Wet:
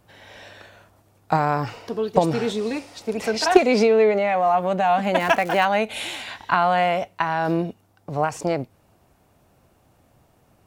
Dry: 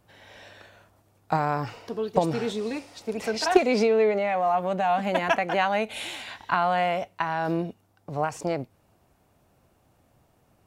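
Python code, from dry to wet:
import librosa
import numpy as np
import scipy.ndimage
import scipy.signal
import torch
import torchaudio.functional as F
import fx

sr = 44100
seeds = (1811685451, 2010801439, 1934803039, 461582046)

y = fx.dmg_crackle(x, sr, seeds[0], per_s=370.0, level_db=-31.0, at=(5.19, 5.64), fade=0.02)
y = F.gain(torch.from_numpy(y), 4.5).numpy()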